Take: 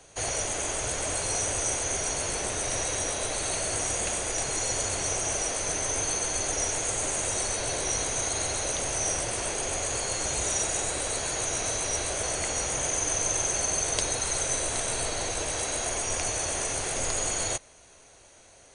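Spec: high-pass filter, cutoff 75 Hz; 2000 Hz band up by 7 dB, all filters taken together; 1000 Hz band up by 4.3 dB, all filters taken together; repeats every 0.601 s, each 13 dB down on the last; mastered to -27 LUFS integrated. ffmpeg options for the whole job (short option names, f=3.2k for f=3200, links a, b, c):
-af "highpass=75,equalizer=f=1k:t=o:g=4,equalizer=f=2k:t=o:g=7.5,aecho=1:1:601|1202|1803:0.224|0.0493|0.0108,volume=-1.5dB"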